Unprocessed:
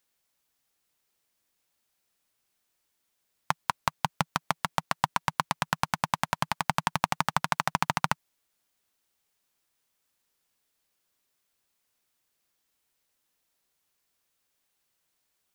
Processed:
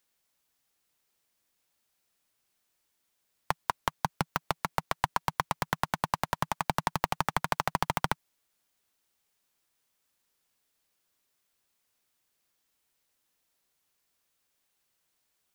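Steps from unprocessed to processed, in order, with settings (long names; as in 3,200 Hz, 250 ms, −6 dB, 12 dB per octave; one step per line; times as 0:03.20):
wavefolder on the positive side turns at −12 dBFS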